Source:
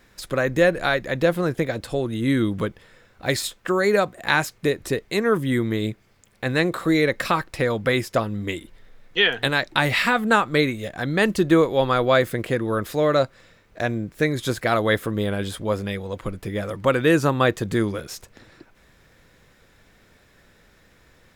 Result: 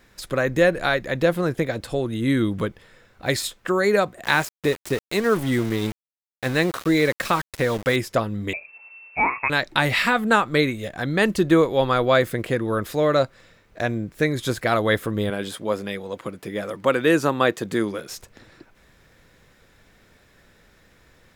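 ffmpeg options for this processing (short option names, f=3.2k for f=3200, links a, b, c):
-filter_complex "[0:a]asettb=1/sr,asplit=3[a][b][c];[a]atrim=end=4.244[d];[b]atrim=start=4.24:end=7.96,asetpts=PTS-STARTPTS,afade=t=in:d=0.004:c=qsin,afade=t=out:st=3.716:d=0.004:c=qsin,aeval=exprs='val(0)*gte(abs(val(0)),0.0335)':c=same[e];[c]atrim=start=7.956[f];[d][e]acrossfade=d=0.004:c1=hsin:c2=qsin[g];[g][f]acrossfade=d=0.004:c1=qsin:c2=hsin,asettb=1/sr,asplit=3[h][i][j];[h]atrim=end=8.534[k];[i]atrim=start=8.53:end=9.5,asetpts=PTS-STARTPTS,afade=t=in:d=0.004:c=qsin,afade=t=out:st=0.966:d=0.004:c=qsin,lowpass=f=2.3k:t=q:w=0.5098,lowpass=f=2.3k:t=q:w=0.6013,lowpass=f=2.3k:t=q:w=0.9,lowpass=f=2.3k:t=q:w=2.563,afreqshift=-2700[l];[j]atrim=start=9.496[m];[k][l]acrossfade=d=0.004:c1=hsin:c2=qsin[n];[n][m]acrossfade=d=0.004:c1=qsin:c2=hsin,asettb=1/sr,asplit=3[o][p][q];[o]atrim=end=15.304[r];[p]atrim=start=15.3:end=18.08,asetpts=PTS-STARTPTS,afade=t=in:d=0.004:c=qsin,afade=t=out:st=2.776:d=0.004:c=qsin,highpass=190[s];[q]atrim=start=18.076[t];[r][s]acrossfade=d=0.004:c1=hsin:c2=qsin[u];[u][t]acrossfade=d=0.004:c1=qsin:c2=hsin"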